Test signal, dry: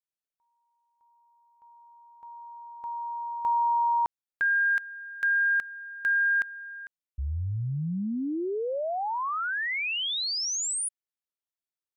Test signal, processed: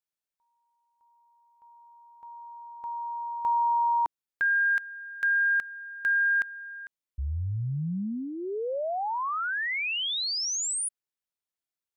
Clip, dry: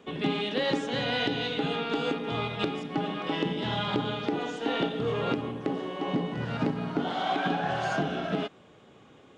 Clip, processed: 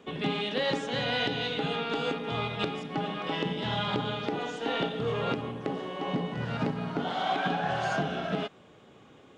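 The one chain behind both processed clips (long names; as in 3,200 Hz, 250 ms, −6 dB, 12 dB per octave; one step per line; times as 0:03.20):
dynamic equaliser 310 Hz, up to −6 dB, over −42 dBFS, Q 2.6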